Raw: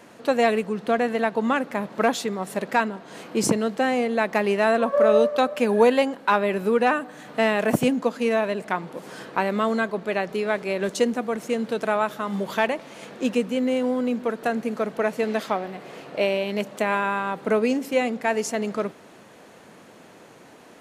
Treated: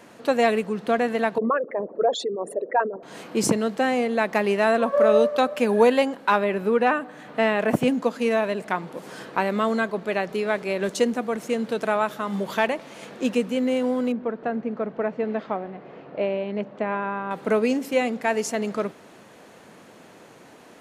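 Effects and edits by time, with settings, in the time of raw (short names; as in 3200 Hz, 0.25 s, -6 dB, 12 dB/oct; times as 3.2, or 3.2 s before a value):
1.38–3.03 formant sharpening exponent 3
6.44–7.88 tone controls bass -1 dB, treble -8 dB
14.12–17.31 tape spacing loss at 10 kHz 38 dB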